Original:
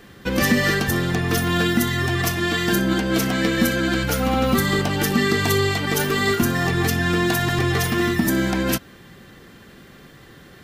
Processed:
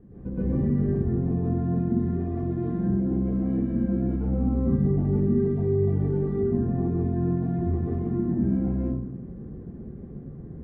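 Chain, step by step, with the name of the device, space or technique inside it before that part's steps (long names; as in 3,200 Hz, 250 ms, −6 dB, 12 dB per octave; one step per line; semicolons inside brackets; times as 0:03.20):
television next door (downward compressor 4 to 1, threshold −28 dBFS, peak gain reduction 13 dB; low-pass filter 260 Hz 12 dB per octave; convolution reverb RT60 0.80 s, pre-delay 113 ms, DRR −10 dB)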